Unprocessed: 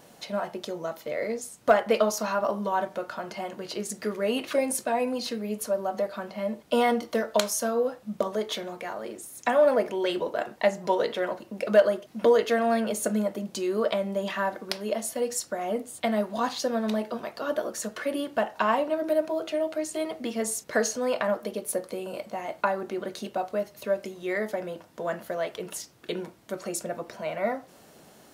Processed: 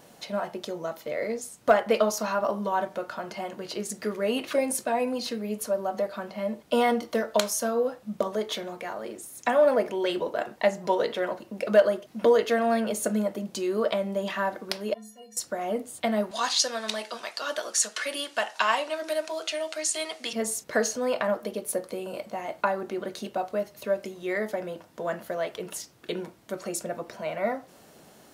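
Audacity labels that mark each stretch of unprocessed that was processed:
14.940000	15.370000	stiff-string resonator 210 Hz, decay 0.5 s, inharmonicity 0.03
16.310000	20.330000	meter weighting curve ITU-R 468

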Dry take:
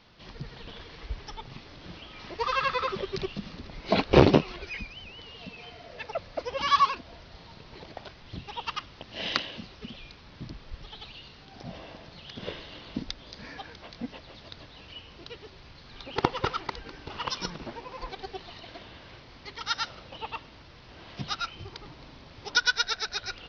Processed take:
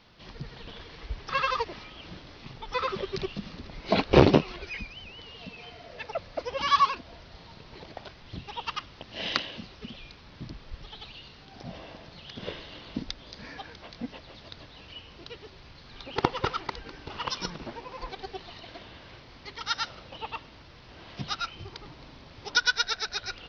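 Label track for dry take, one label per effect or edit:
1.290000	2.740000	reverse

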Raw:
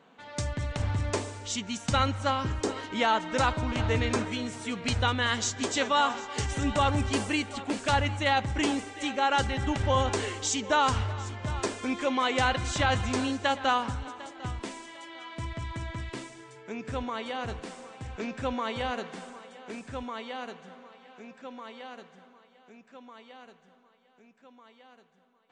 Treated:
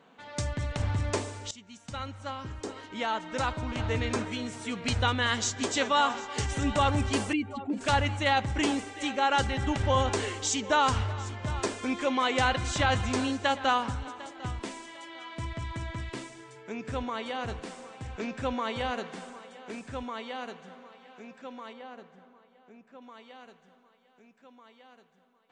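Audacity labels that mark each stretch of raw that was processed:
1.510000	5.080000	fade in linear, from −17.5 dB
7.330000	7.810000	expanding power law on the bin magnitudes exponent 1.9
21.730000	23.020000	high-shelf EQ 2,300 Hz −10 dB

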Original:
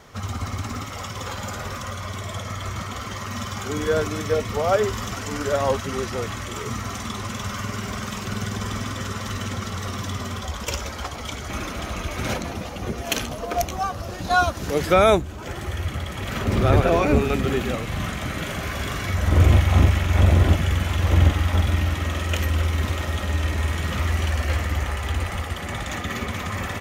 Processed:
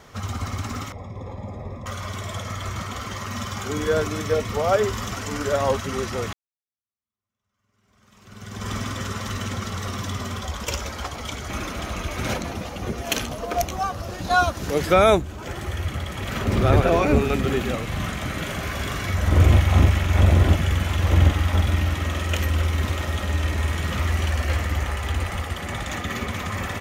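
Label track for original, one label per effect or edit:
0.920000	1.860000	moving average over 30 samples
6.330000	8.700000	fade in exponential

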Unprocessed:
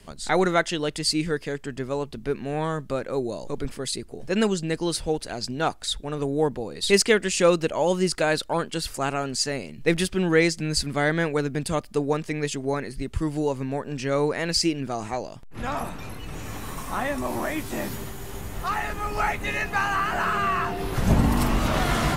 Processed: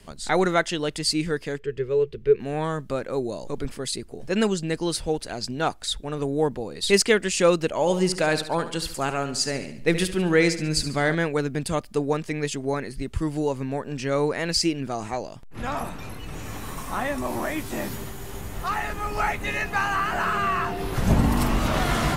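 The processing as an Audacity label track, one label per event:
1.590000	2.400000	drawn EQ curve 150 Hz 0 dB, 260 Hz −13 dB, 440 Hz +11 dB, 680 Hz −16 dB, 1,800 Hz −2 dB, 2,800 Hz −1 dB, 4,900 Hz −10 dB, 8,700 Hz −16 dB
7.690000	11.150000	repeating echo 71 ms, feedback 46%, level −12 dB

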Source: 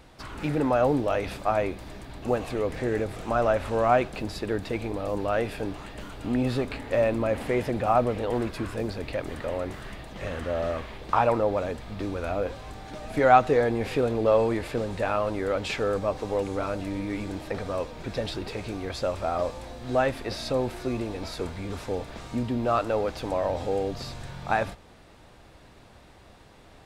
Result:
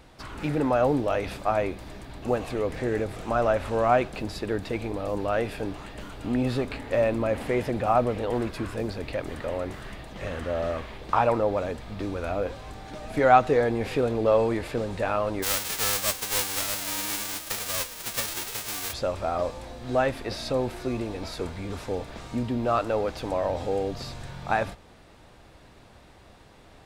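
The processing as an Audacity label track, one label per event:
15.420000	18.920000	spectral envelope flattened exponent 0.1

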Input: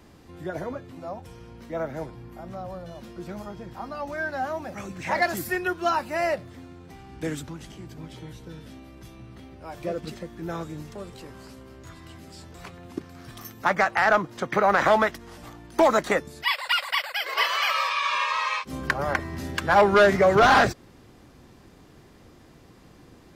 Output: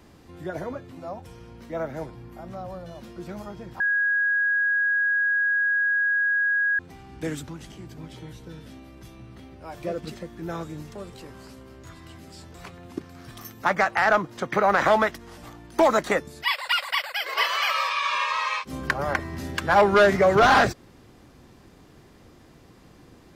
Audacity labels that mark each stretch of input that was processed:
3.800000	6.790000	beep over 1,650 Hz −19.5 dBFS

